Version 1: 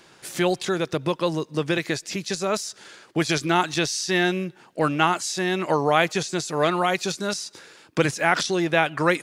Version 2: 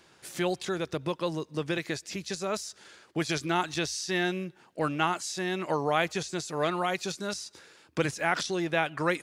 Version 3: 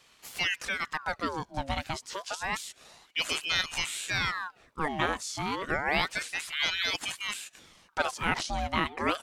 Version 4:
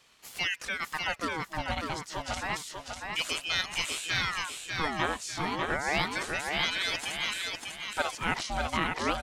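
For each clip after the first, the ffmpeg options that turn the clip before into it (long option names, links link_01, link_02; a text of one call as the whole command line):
ffmpeg -i in.wav -af "equalizer=frequency=76:width_type=o:width=0.23:gain=14,volume=-7dB" out.wav
ffmpeg -i in.wav -af "aeval=exprs='val(0)*sin(2*PI*1600*n/s+1600*0.75/0.29*sin(2*PI*0.29*n/s))':channel_layout=same,volume=1.5dB" out.wav
ffmpeg -i in.wav -af "aecho=1:1:596|1192|1788|2384|2980:0.631|0.233|0.0864|0.032|0.0118,volume=-1.5dB" out.wav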